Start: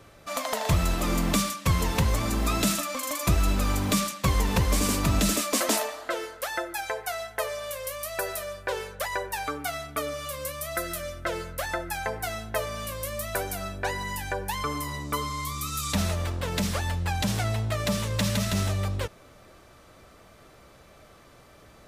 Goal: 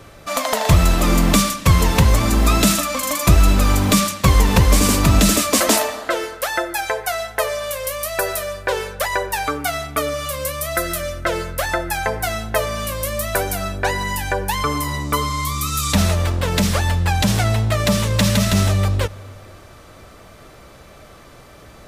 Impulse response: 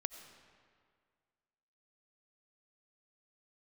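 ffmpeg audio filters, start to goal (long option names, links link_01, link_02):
-filter_complex "[0:a]asplit=2[link_01][link_02];[1:a]atrim=start_sample=2205,lowshelf=frequency=120:gain=9[link_03];[link_02][link_03]afir=irnorm=-1:irlink=0,volume=-9.5dB[link_04];[link_01][link_04]amix=inputs=2:normalize=0,volume=7dB"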